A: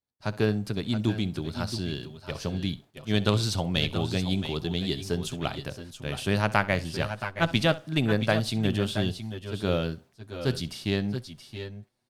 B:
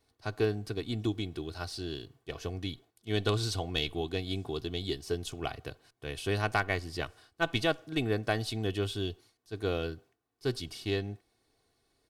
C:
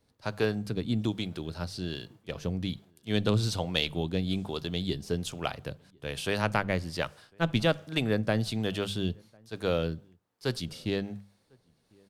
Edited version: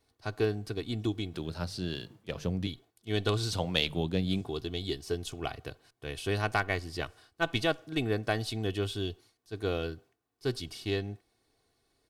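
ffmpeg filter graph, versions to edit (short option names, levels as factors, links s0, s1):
-filter_complex "[2:a]asplit=2[s0][s1];[1:a]asplit=3[s2][s3][s4];[s2]atrim=end=1.342[s5];[s0]atrim=start=1.338:end=2.672[s6];[s3]atrim=start=2.668:end=3.532[s7];[s1]atrim=start=3.528:end=4.412[s8];[s4]atrim=start=4.408[s9];[s5][s6]acrossfade=d=0.004:c1=hsin:c2=hsin[s10];[s10][s7]acrossfade=d=0.004:c1=hsin:c2=hsin[s11];[s11][s8]acrossfade=d=0.004:c1=hsin:c2=hsin[s12];[s12][s9]acrossfade=d=0.004:c1=hsin:c2=hsin"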